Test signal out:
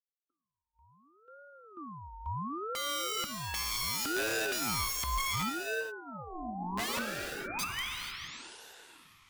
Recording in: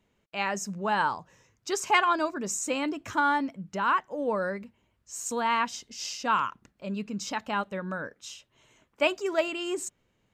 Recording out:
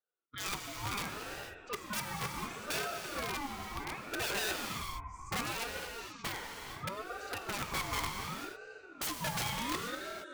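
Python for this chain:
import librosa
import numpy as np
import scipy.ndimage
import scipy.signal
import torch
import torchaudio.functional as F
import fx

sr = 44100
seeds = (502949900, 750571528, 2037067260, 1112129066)

p1 = fx.noise_reduce_blind(x, sr, reduce_db=20)
p2 = fx.rider(p1, sr, range_db=4, speed_s=2.0)
p3 = fx.vowel_filter(p2, sr, vowel='e')
p4 = fx.small_body(p3, sr, hz=(240.0, 980.0), ring_ms=20, db=8)
p5 = p4 + fx.echo_diffused(p4, sr, ms=522, feedback_pct=41, wet_db=-14, dry=0)
p6 = (np.mod(10.0 ** (33.5 / 20.0) * p5 + 1.0, 2.0) - 1.0) / 10.0 ** (33.5 / 20.0)
p7 = fx.rev_gated(p6, sr, seeds[0], gate_ms=500, shape='flat', drr_db=2.5)
p8 = fx.ring_lfo(p7, sr, carrier_hz=740.0, swing_pct=35, hz=0.69)
y = p8 * librosa.db_to_amplitude(5.5)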